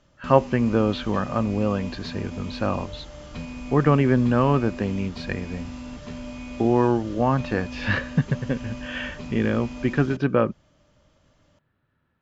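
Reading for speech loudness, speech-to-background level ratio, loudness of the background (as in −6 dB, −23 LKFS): −24.0 LKFS, 13.0 dB, −37.0 LKFS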